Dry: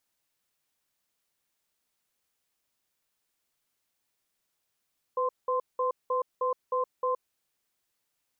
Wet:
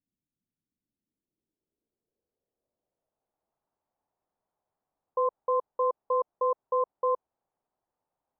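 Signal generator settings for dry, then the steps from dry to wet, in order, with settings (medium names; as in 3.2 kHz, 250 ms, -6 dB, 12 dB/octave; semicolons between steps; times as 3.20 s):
cadence 504 Hz, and 1.04 kHz, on 0.12 s, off 0.19 s, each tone -27.5 dBFS 2.03 s
low-pass sweep 230 Hz -> 820 Hz, 0.64–3.58 s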